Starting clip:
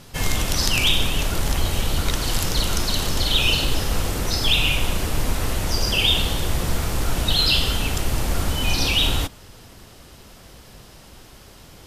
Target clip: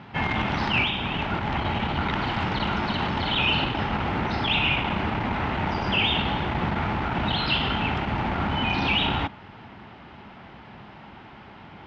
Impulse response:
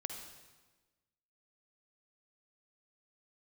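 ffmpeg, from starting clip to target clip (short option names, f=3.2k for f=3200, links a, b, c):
-filter_complex "[0:a]asettb=1/sr,asplit=3[a][b][c];[a]atrim=end=0.804[d];[b]atrim=start=0.8:end=1.52,asetpts=PTS-STARTPTS,afade=t=in:d=0.004:c=qsin,afade=t=out:st=0.716:d=0.004:c=qsin,acompressor=threshold=-18dB:ratio=6[e];[c]atrim=start=1.516[f];[d][e]acrossfade=d=0.004:c1=hsin:c2=qsin[g];[g][f]acrossfade=d=0.004:c1=qsin:c2=hsin,asoftclip=type=tanh:threshold=-14dB,highpass=100,equalizer=f=210:t=q:w=4:g=5,equalizer=f=500:t=q:w=4:g=-7,equalizer=f=860:t=q:w=4:g=9,equalizer=f=1.4k:t=q:w=4:g=3,equalizer=f=2.1k:t=q:w=4:g=3,lowpass=f=2.9k:w=0.5412,lowpass=f=2.9k:w=1.3066,volume=2dB"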